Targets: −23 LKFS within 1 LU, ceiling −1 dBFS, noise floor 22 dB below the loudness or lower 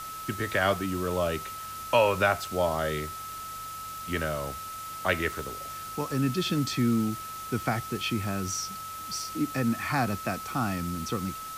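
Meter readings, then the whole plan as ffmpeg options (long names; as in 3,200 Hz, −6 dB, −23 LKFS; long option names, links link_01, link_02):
interfering tone 1,300 Hz; level of the tone −37 dBFS; background noise floor −39 dBFS; target noise floor −52 dBFS; integrated loudness −29.5 LKFS; sample peak −10.5 dBFS; target loudness −23.0 LKFS
→ -af "bandreject=frequency=1300:width=30"
-af "afftdn=noise_reduction=13:noise_floor=-39"
-af "volume=6.5dB"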